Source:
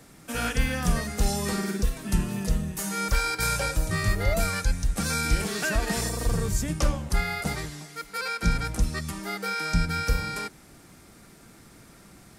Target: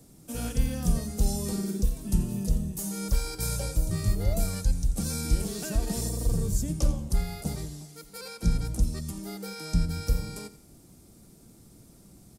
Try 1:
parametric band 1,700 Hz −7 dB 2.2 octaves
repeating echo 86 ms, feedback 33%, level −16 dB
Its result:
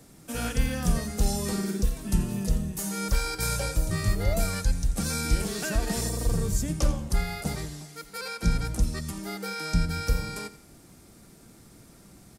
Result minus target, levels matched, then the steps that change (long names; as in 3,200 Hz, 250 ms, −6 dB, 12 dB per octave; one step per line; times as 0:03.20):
2,000 Hz band +8.5 dB
change: parametric band 1,700 Hz −18 dB 2.2 octaves